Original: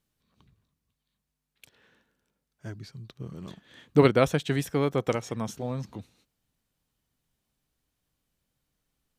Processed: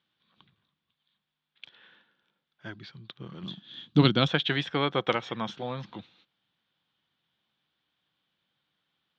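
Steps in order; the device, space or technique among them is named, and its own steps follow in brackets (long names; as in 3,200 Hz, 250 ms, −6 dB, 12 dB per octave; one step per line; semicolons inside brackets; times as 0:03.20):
kitchen radio (loudspeaker in its box 220–3,900 Hz, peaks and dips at 260 Hz −8 dB, 430 Hz −8 dB, 620 Hz −5 dB, 1,500 Hz +3 dB, 3,400 Hz +10 dB)
0:03.43–0:04.28: graphic EQ with 10 bands 125 Hz +6 dB, 250 Hz +6 dB, 500 Hz −8 dB, 1,000 Hz −5 dB, 2,000 Hz −10 dB, 4,000 Hz +4 dB, 8,000 Hz +7 dB
level +4.5 dB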